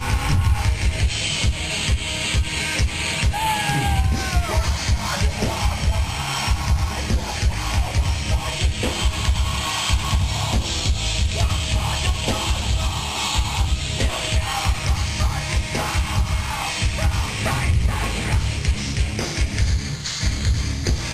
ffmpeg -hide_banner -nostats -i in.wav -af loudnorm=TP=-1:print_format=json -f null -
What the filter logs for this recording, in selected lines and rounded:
"input_i" : "-22.1",
"input_tp" : "-5.7",
"input_lra" : "1.7",
"input_thresh" : "-32.1",